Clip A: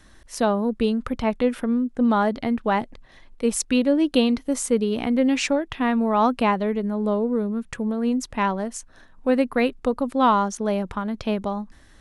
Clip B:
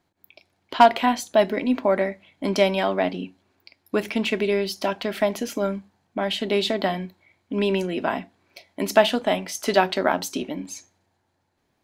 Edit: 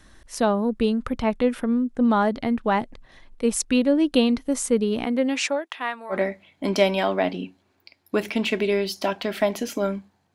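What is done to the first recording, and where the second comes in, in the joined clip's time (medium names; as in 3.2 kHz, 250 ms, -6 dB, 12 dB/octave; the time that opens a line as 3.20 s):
clip A
5.04–6.17 s: high-pass 210 Hz -> 1.3 kHz
6.13 s: go over to clip B from 1.93 s, crossfade 0.08 s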